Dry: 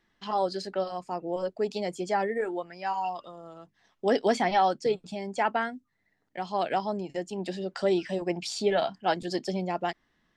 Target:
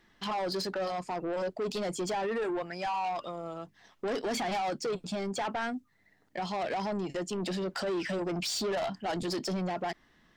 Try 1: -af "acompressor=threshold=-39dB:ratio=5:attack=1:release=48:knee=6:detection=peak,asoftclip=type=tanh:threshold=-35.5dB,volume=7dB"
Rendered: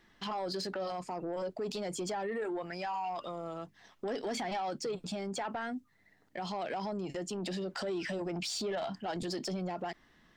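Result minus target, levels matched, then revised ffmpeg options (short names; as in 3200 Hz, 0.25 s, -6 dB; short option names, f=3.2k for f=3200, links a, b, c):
compressor: peak gain reduction +8 dB
-af "acompressor=threshold=-29dB:ratio=5:attack=1:release=48:knee=6:detection=peak,asoftclip=type=tanh:threshold=-35.5dB,volume=7dB"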